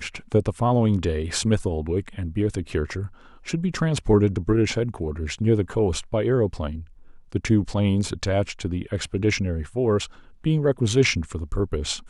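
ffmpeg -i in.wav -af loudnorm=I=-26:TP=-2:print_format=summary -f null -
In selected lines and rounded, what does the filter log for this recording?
Input Integrated:    -23.9 LUFS
Input True Peak:      -6.9 dBTP
Input LRA:             1.6 LU
Input Threshold:     -34.1 LUFS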